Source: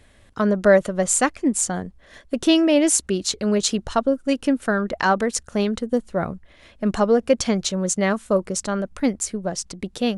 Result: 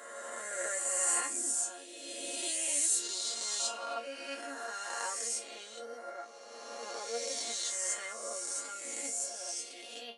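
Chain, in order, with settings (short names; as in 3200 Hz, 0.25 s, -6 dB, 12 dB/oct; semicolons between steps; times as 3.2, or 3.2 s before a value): spectral swells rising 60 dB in 2.58 s; dynamic EQ 8600 Hz, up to +5 dB, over -34 dBFS, Q 2.7; HPF 360 Hz 24 dB/oct; tilt shelf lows -5 dB, about 1400 Hz; resonator bank A#3 minor, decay 0.21 s; gain -6 dB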